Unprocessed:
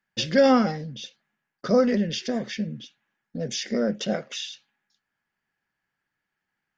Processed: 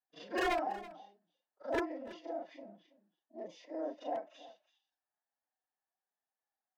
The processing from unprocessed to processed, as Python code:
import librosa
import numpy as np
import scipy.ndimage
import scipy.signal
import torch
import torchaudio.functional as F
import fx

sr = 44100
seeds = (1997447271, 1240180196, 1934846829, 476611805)

p1 = fx.frame_reverse(x, sr, frame_ms=92.0)
p2 = fx.level_steps(p1, sr, step_db=19)
p3 = p1 + F.gain(torch.from_numpy(p2), -2.5).numpy()
p4 = fx.bandpass_q(p3, sr, hz=720.0, q=4.8)
p5 = 10.0 ** (-26.0 / 20.0) * (np.abs((p4 / 10.0 ** (-26.0 / 20.0) + 3.0) % 4.0 - 2.0) - 1.0)
p6 = fx.pitch_keep_formants(p5, sr, semitones=5.0)
y = p6 + fx.echo_single(p6, sr, ms=328, db=-17.5, dry=0)